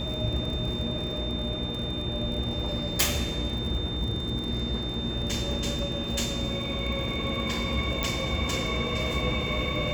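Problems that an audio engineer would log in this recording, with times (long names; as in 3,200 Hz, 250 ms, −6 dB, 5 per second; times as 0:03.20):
surface crackle 39 per second −34 dBFS
mains hum 60 Hz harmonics 6 −35 dBFS
whistle 3,600 Hz −34 dBFS
0:08.03: click −12 dBFS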